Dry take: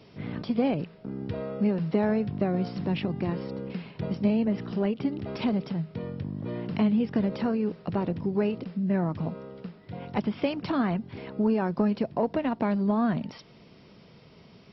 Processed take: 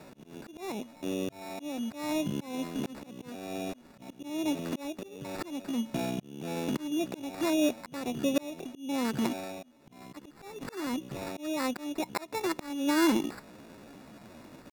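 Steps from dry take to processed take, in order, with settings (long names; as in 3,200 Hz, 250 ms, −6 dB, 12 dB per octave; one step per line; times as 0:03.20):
decimation without filtering 20×
pitch shifter +6 semitones
volume swells 559 ms
level +3 dB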